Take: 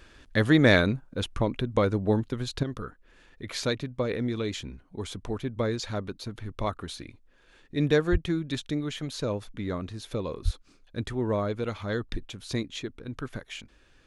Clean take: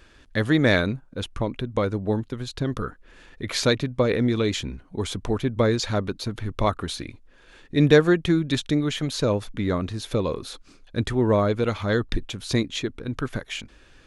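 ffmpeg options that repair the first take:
-filter_complex "[0:a]asplit=3[a][b][c];[a]afade=t=out:st=8.11:d=0.02[d];[b]highpass=f=140:w=0.5412,highpass=f=140:w=1.3066,afade=t=in:st=8.11:d=0.02,afade=t=out:st=8.23:d=0.02[e];[c]afade=t=in:st=8.23:d=0.02[f];[d][e][f]amix=inputs=3:normalize=0,asplit=3[g][h][i];[g]afade=t=out:st=10.44:d=0.02[j];[h]highpass=f=140:w=0.5412,highpass=f=140:w=1.3066,afade=t=in:st=10.44:d=0.02,afade=t=out:st=10.56:d=0.02[k];[i]afade=t=in:st=10.56:d=0.02[l];[j][k][l]amix=inputs=3:normalize=0,asetnsamples=n=441:p=0,asendcmd='2.63 volume volume 7.5dB',volume=0dB"

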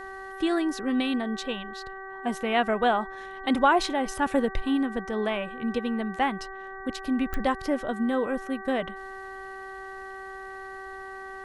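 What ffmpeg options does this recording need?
-af "adeclick=t=4,bandreject=f=384.5:t=h:w=4,bandreject=f=769:t=h:w=4,bandreject=f=1.1535k:t=h:w=4,bandreject=f=1.538k:t=h:w=4,bandreject=f=1.9225k:t=h:w=4"

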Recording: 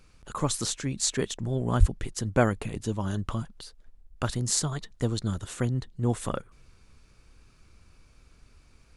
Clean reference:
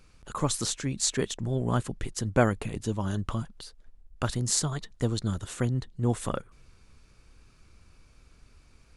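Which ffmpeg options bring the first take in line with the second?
-filter_complex "[0:a]asplit=3[a][b][c];[a]afade=t=out:st=1.79:d=0.02[d];[b]highpass=f=140:w=0.5412,highpass=f=140:w=1.3066,afade=t=in:st=1.79:d=0.02,afade=t=out:st=1.91:d=0.02[e];[c]afade=t=in:st=1.91:d=0.02[f];[d][e][f]amix=inputs=3:normalize=0"

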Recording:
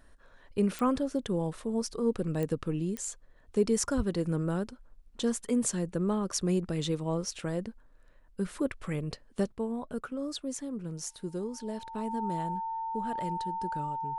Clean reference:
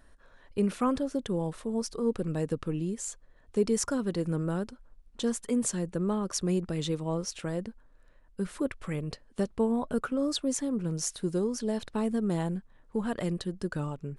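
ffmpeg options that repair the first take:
-filter_complex "[0:a]adeclick=t=4,bandreject=f=900:w=30,asplit=3[a][b][c];[a]afade=t=out:st=3.96:d=0.02[d];[b]highpass=f=140:w=0.5412,highpass=f=140:w=1.3066,afade=t=in:st=3.96:d=0.02,afade=t=out:st=4.08:d=0.02[e];[c]afade=t=in:st=4.08:d=0.02[f];[d][e][f]amix=inputs=3:normalize=0,asetnsamples=n=441:p=0,asendcmd='9.52 volume volume 6.5dB',volume=0dB"

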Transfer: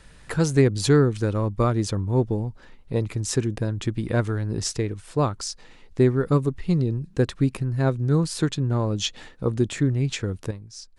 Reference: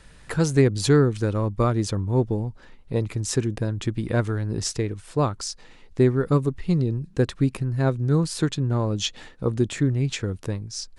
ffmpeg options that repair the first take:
-af "asetnsamples=n=441:p=0,asendcmd='10.51 volume volume 8dB',volume=0dB"

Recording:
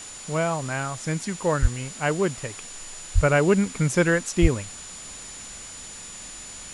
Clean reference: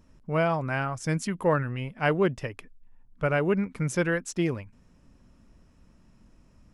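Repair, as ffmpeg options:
-filter_complex "[0:a]bandreject=f=7k:w=30,asplit=3[a][b][c];[a]afade=t=out:st=1.61:d=0.02[d];[b]highpass=f=140:w=0.5412,highpass=f=140:w=1.3066,afade=t=in:st=1.61:d=0.02,afade=t=out:st=1.73:d=0.02[e];[c]afade=t=in:st=1.73:d=0.02[f];[d][e][f]amix=inputs=3:normalize=0,asplit=3[g][h][i];[g]afade=t=out:st=3.14:d=0.02[j];[h]highpass=f=140:w=0.5412,highpass=f=140:w=1.3066,afade=t=in:st=3.14:d=0.02,afade=t=out:st=3.26:d=0.02[k];[i]afade=t=in:st=3.26:d=0.02[l];[j][k][l]amix=inputs=3:normalize=0,asplit=3[m][n][o];[m]afade=t=out:st=4.41:d=0.02[p];[n]highpass=f=140:w=0.5412,highpass=f=140:w=1.3066,afade=t=in:st=4.41:d=0.02,afade=t=out:st=4.53:d=0.02[q];[o]afade=t=in:st=4.53:d=0.02[r];[p][q][r]amix=inputs=3:normalize=0,afwtdn=0.01,asetnsamples=n=441:p=0,asendcmd='2.74 volume volume -5.5dB',volume=0dB"

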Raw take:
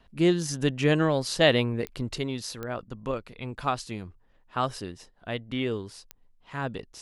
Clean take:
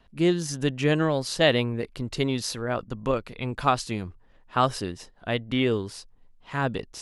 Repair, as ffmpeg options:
-af "adeclick=t=4,asetnsamples=n=441:p=0,asendcmd='2.18 volume volume 5.5dB',volume=0dB"

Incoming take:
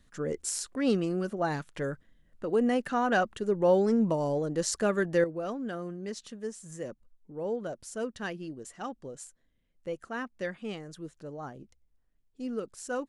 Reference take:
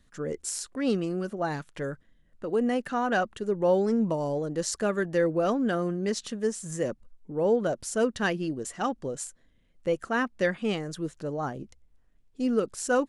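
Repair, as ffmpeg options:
-af "asetnsamples=n=441:p=0,asendcmd='5.24 volume volume 9dB',volume=0dB"

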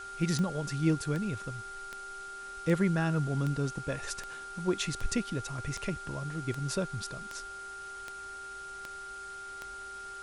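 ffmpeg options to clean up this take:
-af "adeclick=t=4,bandreject=f=390.1:t=h:w=4,bandreject=f=780.2:t=h:w=4,bandreject=f=1.1703k:t=h:w=4,bandreject=f=1.5604k:t=h:w=4,bandreject=f=1.4k:w=30,afwtdn=0.0025"

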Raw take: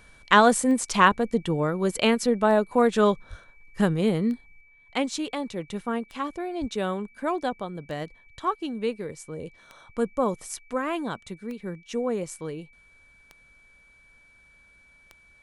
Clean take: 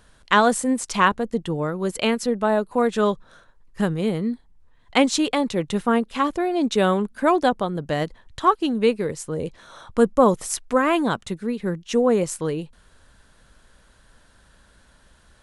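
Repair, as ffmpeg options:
-filter_complex "[0:a]adeclick=t=4,bandreject=f=2.3k:w=30,asplit=3[a][b][c];[a]afade=t=out:st=3.29:d=0.02[d];[b]highpass=f=140:w=0.5412,highpass=f=140:w=1.3066,afade=t=in:st=3.29:d=0.02,afade=t=out:st=3.41:d=0.02[e];[c]afade=t=in:st=3.41:d=0.02[f];[d][e][f]amix=inputs=3:normalize=0,asplit=3[g][h][i];[g]afade=t=out:st=6.6:d=0.02[j];[h]highpass=f=140:w=0.5412,highpass=f=140:w=1.3066,afade=t=in:st=6.6:d=0.02,afade=t=out:st=6.72:d=0.02[k];[i]afade=t=in:st=6.72:d=0.02[l];[j][k][l]amix=inputs=3:normalize=0,asetnsamples=n=441:p=0,asendcmd='4.61 volume volume 9dB',volume=0dB"

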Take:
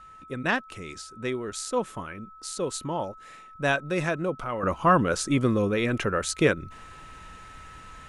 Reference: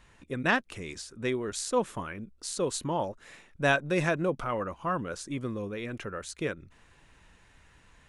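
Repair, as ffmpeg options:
-af "bandreject=f=1.3k:w=30,asetnsamples=n=441:p=0,asendcmd='4.63 volume volume -11dB',volume=0dB"

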